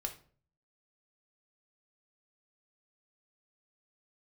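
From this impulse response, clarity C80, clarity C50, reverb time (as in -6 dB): 17.0 dB, 12.0 dB, 0.45 s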